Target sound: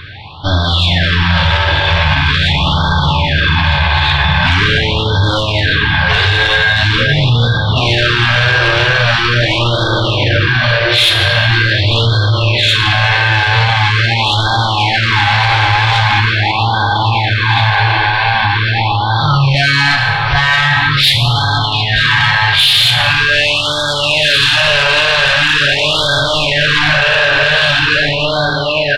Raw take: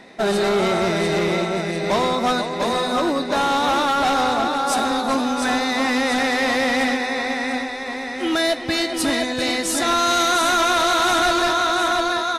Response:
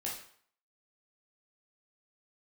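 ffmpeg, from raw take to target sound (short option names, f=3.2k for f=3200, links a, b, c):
-filter_complex "[0:a]equalizer=f=125:t=o:w=1:g=-4,equalizer=f=250:t=o:w=1:g=6,equalizer=f=500:t=o:w=1:g=-6,equalizer=f=1k:t=o:w=1:g=-5,equalizer=f=8k:t=o:w=1:g=12,aecho=1:1:303:0.1,asetrate=18846,aresample=44100,dynaudnorm=f=900:g=5:m=4dB,asoftclip=type=tanh:threshold=-9dB,equalizer=f=260:w=0.59:g=-15,acontrast=71,asplit=2[a][b];[1:a]atrim=start_sample=2205,asetrate=26019,aresample=44100[c];[b][c]afir=irnorm=-1:irlink=0,volume=-9.5dB[d];[a][d]amix=inputs=2:normalize=0,alimiter=level_in=12.5dB:limit=-1dB:release=50:level=0:latency=1,afftfilt=real='re*(1-between(b*sr/1024,210*pow(2300/210,0.5+0.5*sin(2*PI*0.43*pts/sr))/1.41,210*pow(2300/210,0.5+0.5*sin(2*PI*0.43*pts/sr))*1.41))':imag='im*(1-between(b*sr/1024,210*pow(2300/210,0.5+0.5*sin(2*PI*0.43*pts/sr))/1.41,210*pow(2300/210,0.5+0.5*sin(2*PI*0.43*pts/sr))*1.41))':win_size=1024:overlap=0.75,volume=-2dB"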